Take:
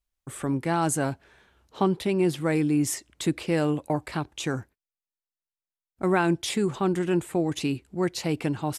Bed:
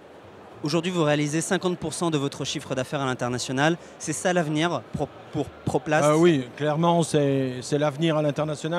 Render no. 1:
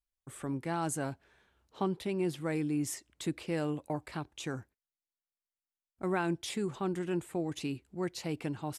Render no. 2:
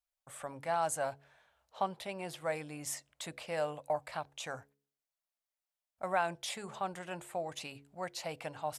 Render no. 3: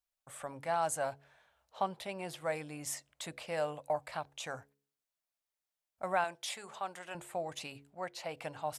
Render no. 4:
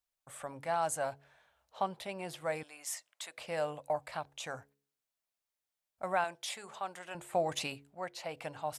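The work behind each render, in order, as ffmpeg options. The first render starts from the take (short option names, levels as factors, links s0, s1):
-af "volume=0.355"
-af "lowshelf=f=460:t=q:w=3:g=-9.5,bandreject=f=70.46:t=h:w=4,bandreject=f=140.92:t=h:w=4,bandreject=f=211.38:t=h:w=4,bandreject=f=281.84:t=h:w=4,bandreject=f=352.3:t=h:w=4,bandreject=f=422.76:t=h:w=4,bandreject=f=493.22:t=h:w=4"
-filter_complex "[0:a]asettb=1/sr,asplit=3[s0][s1][s2];[s0]atrim=end=6.244[s3];[s1]atrim=start=6.24:end=7.15,asetpts=PTS-STARTPTS,afade=t=in:d=0.004:c=qsin,afade=t=out:st=0.906:d=0.004:c=qsin,highpass=f=650:p=1[s4];[s2]atrim=start=7.146[s5];[s3][s4]acrossfade=d=0.004:c1=hsin:c2=qsin[s6];[s6][s5]acrossfade=d=0.004:c1=qsin:c2=hsin,asettb=1/sr,asplit=3[s7][s8][s9];[s7]atrim=end=7.904[s10];[s8]atrim=start=7.9:end=8.37,asetpts=PTS-STARTPTS,afade=t=in:d=0.004:c=qsin,afade=t=out:st=0.466:d=0.004:c=qsin,bass=f=250:g=-5,treble=f=4000:g=-6[s11];[s9]atrim=start=8.366[s12];[s10][s11]acrossfade=d=0.004:c1=hsin:c2=qsin[s13];[s13][s12]acrossfade=d=0.004:c1=qsin:c2=hsin"
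-filter_complex "[0:a]asettb=1/sr,asplit=3[s0][s1][s2];[s0]atrim=end=2.634[s3];[s1]atrim=start=2.63:end=3.38,asetpts=PTS-STARTPTS,afade=t=in:d=0.004:c=qsin,afade=t=out:st=0.746:d=0.004:c=qsin,highpass=800[s4];[s2]atrim=start=3.376[s5];[s3][s4]acrossfade=d=0.004:c1=hsin:c2=qsin[s6];[s6][s5]acrossfade=d=0.004:c1=qsin:c2=hsin,asplit=3[s7][s8][s9];[s7]afade=t=out:st=7.32:d=0.02[s10];[s8]acontrast=70,afade=t=in:st=7.32:d=0.02,afade=t=out:st=7.74:d=0.02[s11];[s9]afade=t=in:st=7.74:d=0.02[s12];[s10][s11][s12]amix=inputs=3:normalize=0"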